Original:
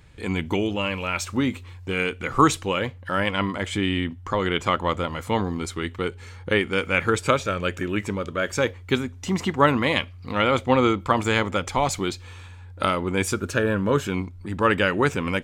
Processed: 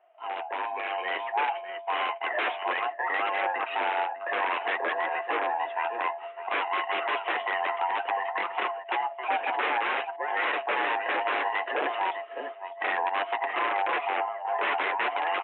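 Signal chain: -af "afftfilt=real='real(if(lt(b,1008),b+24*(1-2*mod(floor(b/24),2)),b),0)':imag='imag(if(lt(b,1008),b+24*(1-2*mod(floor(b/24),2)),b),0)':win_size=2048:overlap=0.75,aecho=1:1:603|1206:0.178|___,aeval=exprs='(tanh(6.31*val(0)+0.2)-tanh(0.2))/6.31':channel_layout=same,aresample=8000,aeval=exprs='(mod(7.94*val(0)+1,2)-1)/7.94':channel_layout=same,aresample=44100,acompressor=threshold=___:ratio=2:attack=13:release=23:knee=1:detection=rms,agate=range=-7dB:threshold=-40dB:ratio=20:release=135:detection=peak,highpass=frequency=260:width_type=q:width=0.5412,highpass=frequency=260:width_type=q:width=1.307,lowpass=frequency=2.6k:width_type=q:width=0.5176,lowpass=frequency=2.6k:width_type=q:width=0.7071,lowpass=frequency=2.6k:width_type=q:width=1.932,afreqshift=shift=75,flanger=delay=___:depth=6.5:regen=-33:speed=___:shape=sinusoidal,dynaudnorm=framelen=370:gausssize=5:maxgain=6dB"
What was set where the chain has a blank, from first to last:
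0.0285, -31dB, 5.4, 0.58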